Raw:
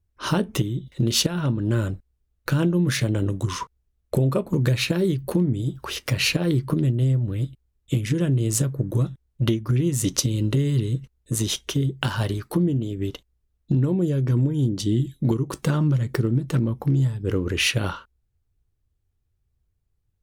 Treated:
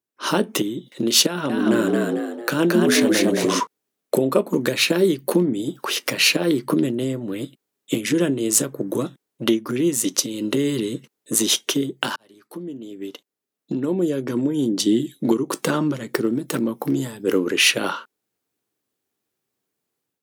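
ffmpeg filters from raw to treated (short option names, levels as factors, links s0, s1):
-filter_complex "[0:a]asettb=1/sr,asplit=3[s0][s1][s2];[s0]atrim=end=1.274[s3];[s1]atrim=start=1.27:end=3.6,asetpts=PTS-STARTPTS,afade=t=in:d=0.004:c=qsin,afade=t=out:st=2.326:d=0.004:c=qsin,asplit=6[s4][s5][s6][s7][s8][s9];[s5]adelay=223,afreqshift=79,volume=0.708[s10];[s6]adelay=446,afreqshift=158,volume=0.275[s11];[s7]adelay=669,afreqshift=237,volume=0.107[s12];[s8]adelay=892,afreqshift=316,volume=0.0422[s13];[s9]adelay=1115,afreqshift=395,volume=0.0164[s14];[s4][s10][s11][s12][s13][s14]amix=inputs=6:normalize=0,atrim=end_sample=102753[s15];[s2]atrim=start=3.596[s16];[s3][s15]acrossfade=d=0.004:c1=hsin:c2=qsin[s17];[s17][s16]acrossfade=d=0.004:c1=qsin:c2=hsin,asettb=1/sr,asplit=3[s18][s19][s20];[s18]atrim=end=16.274[s21];[s19]atrim=start=16.27:end=17.48,asetpts=PTS-STARTPTS,afade=t=in:d=0.004:c=qsin,afade=t=out:st=1.206:d=0.004:c=qsin,highshelf=f=9400:g=10.5[s22];[s20]atrim=start=17.476[s23];[s21][s22]acrossfade=d=0.004:c1=hsin:c2=qsin[s24];[s24][s23]acrossfade=d=0.004:c1=qsin:c2=hsin,asplit=2[s25][s26];[s25]atrim=end=12.16,asetpts=PTS-STARTPTS,afade=t=out:st=12.156:d=0.004:c=hsin[s27];[s26]atrim=start=12.16,asetpts=PTS-STARTPTS,afade=t=in:d=2.66[s28];[s27][s28]concat=n=2:v=0:a=1,highpass=f=230:w=0.5412,highpass=f=230:w=1.3066,dynaudnorm=f=100:g=5:m=2.99,highshelf=f=8700:g=4,volume=0.794"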